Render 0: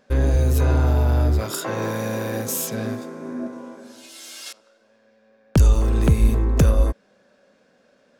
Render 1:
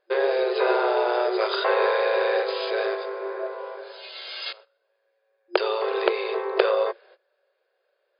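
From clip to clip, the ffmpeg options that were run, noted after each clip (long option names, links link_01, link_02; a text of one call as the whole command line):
ffmpeg -i in.wav -af "agate=range=-19dB:threshold=-49dB:ratio=16:detection=peak,afftfilt=real='re*between(b*sr/4096,350,5000)':imag='im*between(b*sr/4096,350,5000)':win_size=4096:overlap=0.75,volume=6.5dB" out.wav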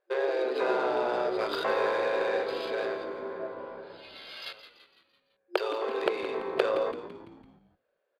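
ffmpeg -i in.wav -filter_complex "[0:a]adynamicsmooth=sensitivity=3.5:basefreq=3800,asplit=6[link_01][link_02][link_03][link_04][link_05][link_06];[link_02]adelay=168,afreqshift=-70,volume=-12dB[link_07];[link_03]adelay=336,afreqshift=-140,volume=-17.8dB[link_08];[link_04]adelay=504,afreqshift=-210,volume=-23.7dB[link_09];[link_05]adelay=672,afreqshift=-280,volume=-29.5dB[link_10];[link_06]adelay=840,afreqshift=-350,volume=-35.4dB[link_11];[link_01][link_07][link_08][link_09][link_10][link_11]amix=inputs=6:normalize=0,volume=-6dB" out.wav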